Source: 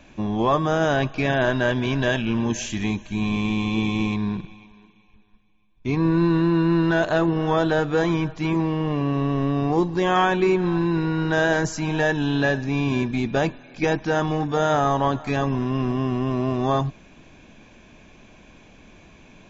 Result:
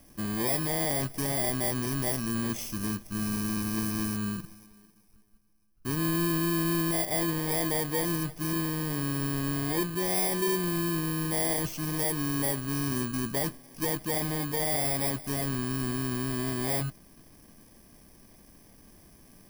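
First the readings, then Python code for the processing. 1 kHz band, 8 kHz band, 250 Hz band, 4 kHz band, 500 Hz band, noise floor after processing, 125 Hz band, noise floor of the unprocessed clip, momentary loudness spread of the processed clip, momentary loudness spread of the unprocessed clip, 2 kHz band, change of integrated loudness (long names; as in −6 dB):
−11.5 dB, can't be measured, −8.5 dB, −3.5 dB, −11.0 dB, −57 dBFS, −8.0 dB, −51 dBFS, 5 LU, 6 LU, −10.5 dB, −6.5 dB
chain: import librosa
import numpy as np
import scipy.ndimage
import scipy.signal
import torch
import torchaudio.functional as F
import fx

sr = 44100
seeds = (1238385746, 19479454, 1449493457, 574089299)

y = fx.bit_reversed(x, sr, seeds[0], block=32)
y = 10.0 ** (-15.5 / 20.0) * np.tanh(y / 10.0 ** (-15.5 / 20.0))
y = y * librosa.db_to_amplitude(-6.0)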